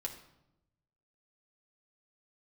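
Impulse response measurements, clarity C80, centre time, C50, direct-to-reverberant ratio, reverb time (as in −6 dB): 12.0 dB, 15 ms, 9.5 dB, 0.5 dB, 0.85 s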